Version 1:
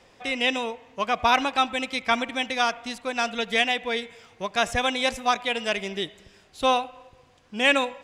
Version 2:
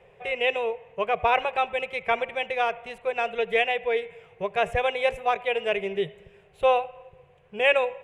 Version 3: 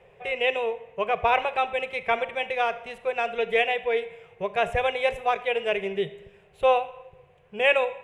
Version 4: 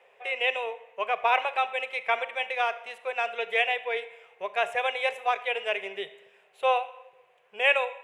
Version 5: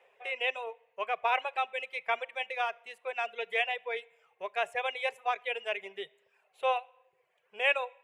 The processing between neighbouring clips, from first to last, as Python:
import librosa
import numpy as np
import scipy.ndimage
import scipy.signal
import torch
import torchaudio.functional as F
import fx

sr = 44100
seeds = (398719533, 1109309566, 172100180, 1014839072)

y1 = fx.curve_eq(x, sr, hz=(110.0, 160.0, 280.0, 400.0, 1300.0, 2600.0, 4900.0, 9400.0), db=(0, 7, -23, 7, -6, 0, -24, -12))
y2 = fx.rev_schroeder(y1, sr, rt60_s=0.63, comb_ms=27, drr_db=14.5)
y3 = scipy.signal.sosfilt(scipy.signal.butter(2, 670.0, 'highpass', fs=sr, output='sos'), y2)
y4 = fx.dereverb_blind(y3, sr, rt60_s=0.81)
y4 = y4 * 10.0 ** (-4.5 / 20.0)